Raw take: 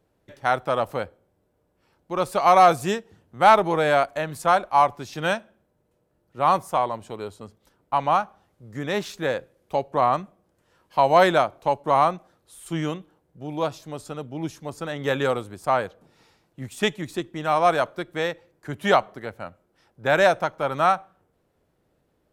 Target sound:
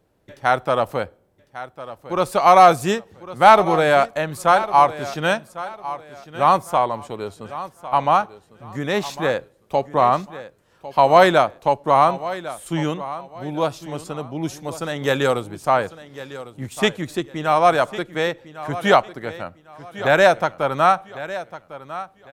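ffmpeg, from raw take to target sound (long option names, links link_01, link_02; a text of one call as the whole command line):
ffmpeg -i in.wav -filter_complex "[0:a]asettb=1/sr,asplit=3[link_01][link_02][link_03];[link_01]atrim=end=14.434[link_04];[link_02]atrim=start=14.43:end=15.4,asetpts=PTS-STARTPTS,afade=type=in:duration=0.004:curve=qsin,afade=type=out:start_time=0.966:duration=0.004:curve=qsin,bass=frequency=250:gain=0,treble=frequency=4000:gain=5[link_05];[link_03]atrim=start=15.396[link_06];[link_04][link_05]acrossfade=duration=0.004:curve1=hsin:curve2=qsin[link_07];[link_07][link_06]acrossfade=duration=0.004:curve1=qsin:curve2=hsin,aecho=1:1:1102|2204|3306:0.178|0.048|0.013,volume=4dB" out.wav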